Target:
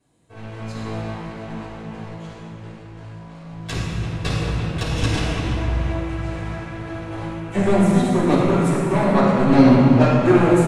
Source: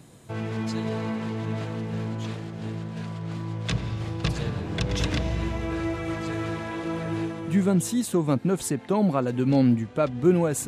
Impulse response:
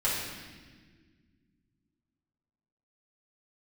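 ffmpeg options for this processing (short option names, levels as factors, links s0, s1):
-filter_complex "[0:a]aeval=exprs='0.355*(cos(1*acos(clip(val(0)/0.355,-1,1)))-cos(1*PI/2))+0.0447*(cos(7*acos(clip(val(0)/0.355,-1,1)))-cos(7*PI/2))':c=same,asplit=2[s0][s1];[s1]adelay=340,highpass=300,lowpass=3400,asoftclip=type=hard:threshold=0.126,volume=0.355[s2];[s0][s2]amix=inputs=2:normalize=0[s3];[1:a]atrim=start_sample=2205,asetrate=23814,aresample=44100[s4];[s3][s4]afir=irnorm=-1:irlink=0,volume=0.501"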